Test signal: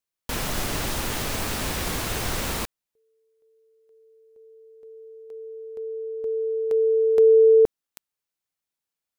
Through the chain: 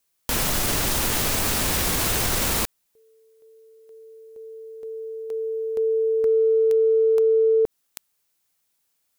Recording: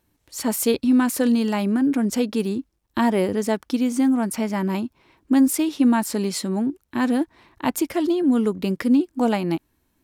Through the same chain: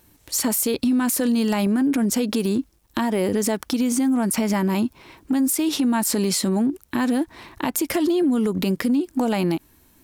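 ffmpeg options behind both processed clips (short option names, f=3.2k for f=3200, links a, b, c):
-af "highshelf=f=5.7k:g=7,acompressor=threshold=-26dB:ratio=20:attack=0.46:release=154:knee=1:detection=peak,apsyclip=18dB,volume=-7.5dB"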